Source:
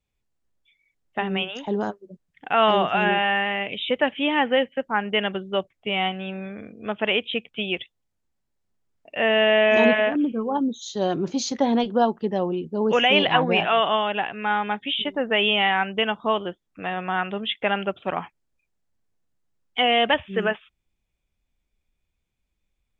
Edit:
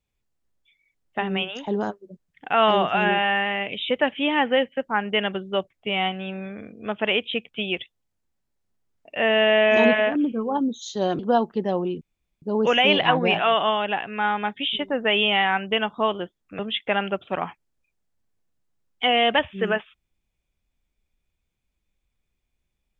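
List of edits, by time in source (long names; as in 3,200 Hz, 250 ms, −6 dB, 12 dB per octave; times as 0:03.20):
0:11.19–0:11.86: remove
0:12.68: splice in room tone 0.41 s
0:16.85–0:17.34: remove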